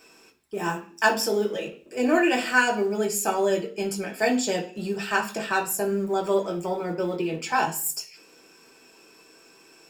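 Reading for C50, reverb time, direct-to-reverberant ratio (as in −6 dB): 12.5 dB, 0.45 s, −1.5 dB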